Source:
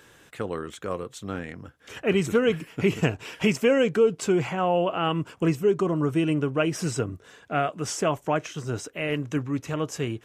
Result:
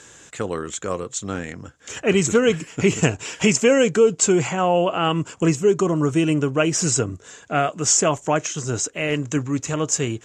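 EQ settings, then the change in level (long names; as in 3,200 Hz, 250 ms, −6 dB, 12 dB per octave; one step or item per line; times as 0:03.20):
low-pass with resonance 7,100 Hz, resonance Q 6.4
+4.5 dB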